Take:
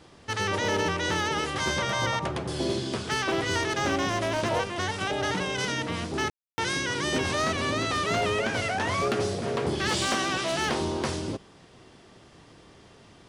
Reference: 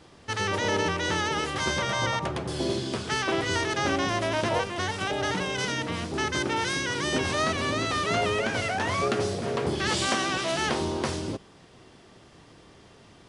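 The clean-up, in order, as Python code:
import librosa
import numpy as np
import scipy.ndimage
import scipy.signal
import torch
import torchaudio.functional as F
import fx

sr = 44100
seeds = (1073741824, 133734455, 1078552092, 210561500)

y = fx.fix_declip(x, sr, threshold_db=-19.0)
y = fx.fix_ambience(y, sr, seeds[0], print_start_s=11.88, print_end_s=12.38, start_s=6.3, end_s=6.58)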